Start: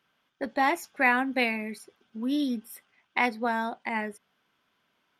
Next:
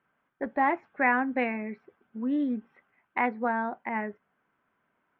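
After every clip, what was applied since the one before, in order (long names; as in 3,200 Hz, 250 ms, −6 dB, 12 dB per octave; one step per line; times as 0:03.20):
low-pass filter 2,000 Hz 24 dB per octave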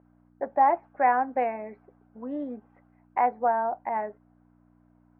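mains hum 60 Hz, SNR 15 dB
resonant band-pass 710 Hz, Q 2.5
level +8 dB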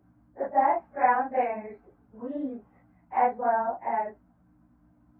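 random phases in long frames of 100 ms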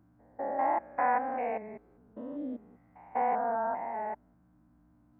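spectrum averaged block by block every 200 ms
level −1.5 dB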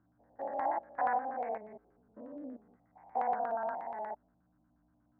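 auto-filter low-pass square 8.4 Hz 740–1,600 Hz
level −8.5 dB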